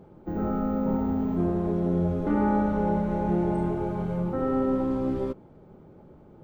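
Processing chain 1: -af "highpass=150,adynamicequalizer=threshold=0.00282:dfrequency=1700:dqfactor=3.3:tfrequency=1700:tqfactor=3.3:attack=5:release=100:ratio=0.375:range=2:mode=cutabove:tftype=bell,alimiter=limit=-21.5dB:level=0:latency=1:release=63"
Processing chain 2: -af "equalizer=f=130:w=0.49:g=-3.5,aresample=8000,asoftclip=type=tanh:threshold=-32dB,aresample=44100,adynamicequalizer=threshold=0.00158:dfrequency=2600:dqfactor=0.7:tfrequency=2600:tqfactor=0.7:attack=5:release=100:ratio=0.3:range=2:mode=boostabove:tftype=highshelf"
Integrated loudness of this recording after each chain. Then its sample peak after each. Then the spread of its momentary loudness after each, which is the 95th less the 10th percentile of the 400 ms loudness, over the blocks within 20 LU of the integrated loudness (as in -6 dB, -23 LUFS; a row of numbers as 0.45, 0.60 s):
-30.0, -35.5 LUFS; -21.5, -29.5 dBFS; 2, 19 LU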